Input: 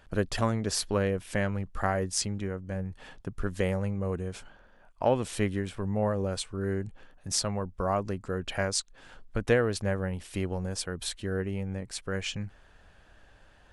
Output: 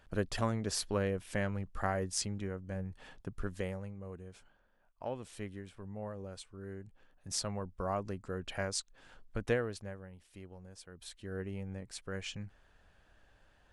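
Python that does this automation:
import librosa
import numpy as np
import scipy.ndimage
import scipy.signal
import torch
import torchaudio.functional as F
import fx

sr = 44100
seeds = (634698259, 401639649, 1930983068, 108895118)

y = fx.gain(x, sr, db=fx.line((3.38, -5.5), (3.95, -14.5), (6.85, -14.5), (7.4, -7.0), (9.51, -7.0), (10.07, -19.0), (10.82, -19.0), (11.43, -8.0)))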